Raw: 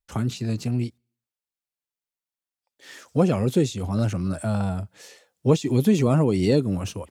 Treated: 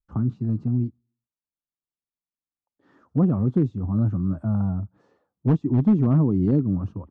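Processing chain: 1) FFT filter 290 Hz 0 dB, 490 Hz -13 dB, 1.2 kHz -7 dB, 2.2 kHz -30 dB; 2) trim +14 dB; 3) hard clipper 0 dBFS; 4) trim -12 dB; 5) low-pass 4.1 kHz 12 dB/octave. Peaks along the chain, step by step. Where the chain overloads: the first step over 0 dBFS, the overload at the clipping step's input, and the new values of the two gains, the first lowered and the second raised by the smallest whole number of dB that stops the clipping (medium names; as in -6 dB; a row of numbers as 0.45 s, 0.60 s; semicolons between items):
-9.5 dBFS, +4.5 dBFS, 0.0 dBFS, -12.0 dBFS, -12.0 dBFS; step 2, 4.5 dB; step 2 +9 dB, step 4 -7 dB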